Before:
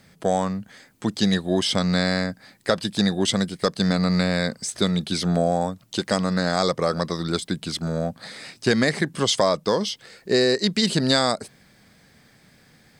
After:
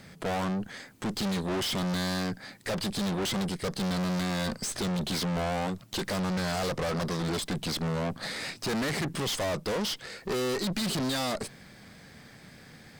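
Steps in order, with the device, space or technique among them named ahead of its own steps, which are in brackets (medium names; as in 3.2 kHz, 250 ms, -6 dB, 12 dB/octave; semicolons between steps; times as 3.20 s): tube preamp driven hard (valve stage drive 36 dB, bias 0.65; treble shelf 5.5 kHz -4 dB); trim +8 dB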